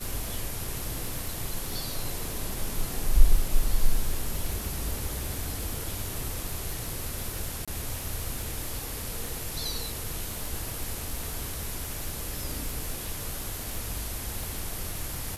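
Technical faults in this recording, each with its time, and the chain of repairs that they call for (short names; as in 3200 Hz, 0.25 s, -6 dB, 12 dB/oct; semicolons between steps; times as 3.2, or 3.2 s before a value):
crackle 52/s -32 dBFS
7.65–7.68 gap 26 ms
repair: de-click; interpolate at 7.65, 26 ms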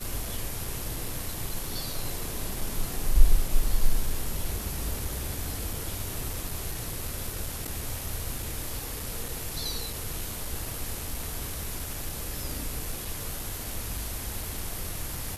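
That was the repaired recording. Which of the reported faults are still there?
none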